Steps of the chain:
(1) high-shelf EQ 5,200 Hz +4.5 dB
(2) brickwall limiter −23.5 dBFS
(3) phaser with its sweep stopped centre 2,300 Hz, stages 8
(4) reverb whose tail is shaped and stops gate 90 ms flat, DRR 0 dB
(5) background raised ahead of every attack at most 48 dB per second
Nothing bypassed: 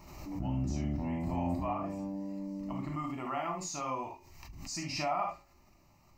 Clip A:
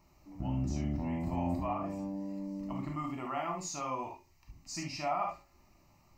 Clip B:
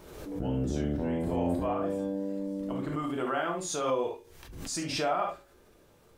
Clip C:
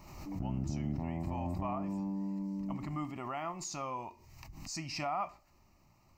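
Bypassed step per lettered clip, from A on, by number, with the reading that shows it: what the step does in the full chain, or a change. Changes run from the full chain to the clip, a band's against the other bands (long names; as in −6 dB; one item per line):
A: 5, 4 kHz band −2.5 dB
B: 3, 500 Hz band +5.0 dB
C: 4, change in momentary loudness spread −3 LU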